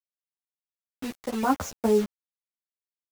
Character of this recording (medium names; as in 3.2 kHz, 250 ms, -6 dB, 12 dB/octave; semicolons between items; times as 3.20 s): random-step tremolo 3.5 Hz; a quantiser's noise floor 6-bit, dither none; a shimmering, thickened sound